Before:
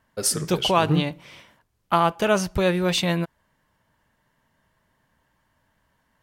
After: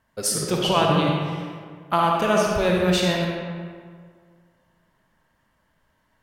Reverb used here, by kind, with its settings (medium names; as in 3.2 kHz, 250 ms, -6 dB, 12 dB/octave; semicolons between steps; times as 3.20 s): algorithmic reverb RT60 1.9 s, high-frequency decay 0.6×, pre-delay 15 ms, DRR -1 dB; trim -2 dB